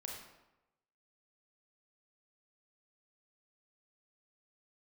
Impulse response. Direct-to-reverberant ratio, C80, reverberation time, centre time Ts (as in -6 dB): -1.0 dB, 5.0 dB, 0.95 s, 50 ms